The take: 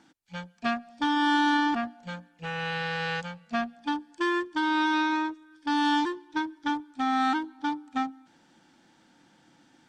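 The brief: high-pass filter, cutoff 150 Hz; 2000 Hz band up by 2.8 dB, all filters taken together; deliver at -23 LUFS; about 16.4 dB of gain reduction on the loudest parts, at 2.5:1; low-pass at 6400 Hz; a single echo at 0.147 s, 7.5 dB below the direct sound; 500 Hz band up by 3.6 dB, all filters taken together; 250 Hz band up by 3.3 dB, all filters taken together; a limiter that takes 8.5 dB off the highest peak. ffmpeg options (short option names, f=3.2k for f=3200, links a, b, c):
-af "highpass=150,lowpass=6.4k,equalizer=f=250:t=o:g=3,equalizer=f=500:t=o:g=4,equalizer=f=2k:t=o:g=3.5,acompressor=threshold=-44dB:ratio=2.5,alimiter=level_in=11dB:limit=-24dB:level=0:latency=1,volume=-11dB,aecho=1:1:147:0.422,volume=21dB"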